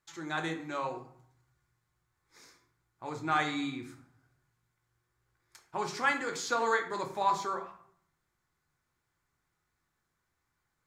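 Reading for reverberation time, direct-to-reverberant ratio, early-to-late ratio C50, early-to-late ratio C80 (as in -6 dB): 0.65 s, 3.0 dB, 10.0 dB, 13.0 dB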